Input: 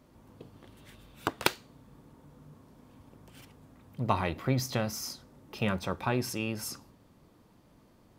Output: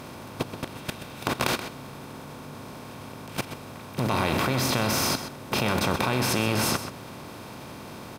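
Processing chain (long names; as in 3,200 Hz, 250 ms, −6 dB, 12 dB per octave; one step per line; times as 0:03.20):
compressor on every frequency bin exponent 0.4
output level in coarse steps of 16 dB
slap from a distant wall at 22 metres, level −10 dB
level +7 dB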